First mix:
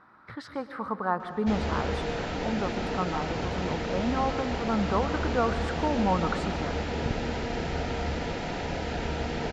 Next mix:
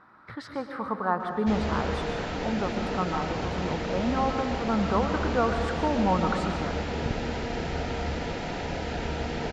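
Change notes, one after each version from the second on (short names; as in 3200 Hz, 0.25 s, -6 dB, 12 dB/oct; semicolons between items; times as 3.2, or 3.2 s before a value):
speech: send +6.0 dB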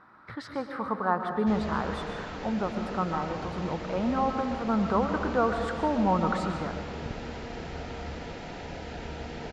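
background -7.0 dB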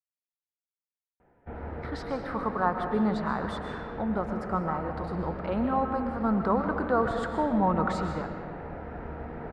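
speech: entry +1.55 s; background: add LPF 1700 Hz 24 dB/oct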